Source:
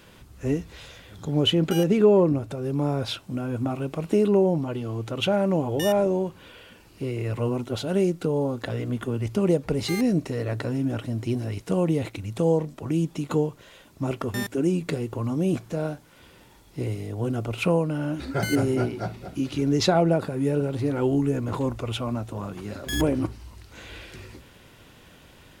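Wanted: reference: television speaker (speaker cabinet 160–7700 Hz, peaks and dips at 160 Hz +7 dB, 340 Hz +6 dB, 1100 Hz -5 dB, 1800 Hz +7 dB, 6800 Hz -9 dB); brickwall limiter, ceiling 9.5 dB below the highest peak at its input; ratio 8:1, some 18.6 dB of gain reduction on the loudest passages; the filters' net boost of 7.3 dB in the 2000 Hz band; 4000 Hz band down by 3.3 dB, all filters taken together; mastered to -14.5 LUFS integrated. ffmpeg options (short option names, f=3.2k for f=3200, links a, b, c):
-af "equalizer=f=2k:t=o:g=7,equalizer=f=4k:t=o:g=-9,acompressor=threshold=-33dB:ratio=8,alimiter=level_in=6dB:limit=-24dB:level=0:latency=1,volume=-6dB,highpass=f=160:w=0.5412,highpass=f=160:w=1.3066,equalizer=f=160:t=q:w=4:g=7,equalizer=f=340:t=q:w=4:g=6,equalizer=f=1.1k:t=q:w=4:g=-5,equalizer=f=1.8k:t=q:w=4:g=7,equalizer=f=6.8k:t=q:w=4:g=-9,lowpass=f=7.7k:w=0.5412,lowpass=f=7.7k:w=1.3066,volume=23.5dB"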